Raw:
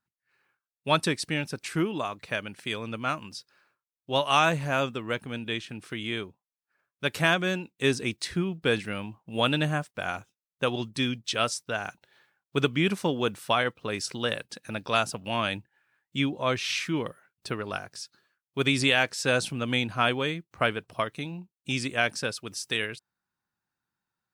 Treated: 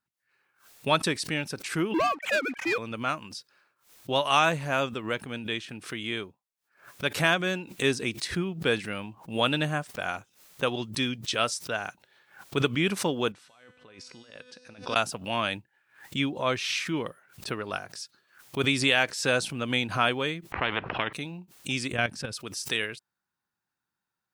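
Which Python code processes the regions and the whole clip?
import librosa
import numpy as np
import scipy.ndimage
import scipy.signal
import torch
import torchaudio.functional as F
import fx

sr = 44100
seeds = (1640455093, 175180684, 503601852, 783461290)

y = fx.chain(x, sr, fx.sine_speech(),
    fx.leveller(passes=3), at=(1.94, 2.78))
y = fx.chain(y, sr, fx.lowpass(hz=6000.0, slope=12),
    fx.over_compress(threshold_db=-38.0, ratio=-1.0),
    fx.comb_fb(f0_hz=250.0, decay_s=1.3, harmonics='all', damping=0.0, mix_pct=80), at=(13.32, 14.96))
y = fx.chain(y, sr, fx.lowpass(hz=2100.0, slope=24),
    fx.spectral_comp(ratio=4.0), at=(20.52, 21.13))
y = fx.chain(y, sr, fx.bass_treble(bass_db=11, treble_db=-4),
    fx.level_steps(step_db=12), at=(21.92, 22.33))
y = fx.low_shelf(y, sr, hz=190.0, db=-4.5)
y = fx.pre_swell(y, sr, db_per_s=140.0)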